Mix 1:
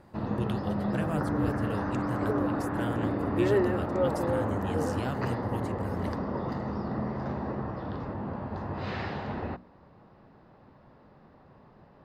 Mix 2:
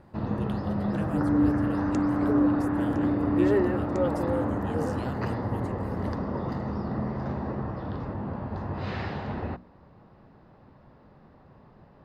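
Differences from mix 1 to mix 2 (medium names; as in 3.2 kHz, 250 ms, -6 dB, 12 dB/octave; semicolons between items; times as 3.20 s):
speech -5.0 dB; first sound: add bass shelf 160 Hz +5 dB; second sound +9.0 dB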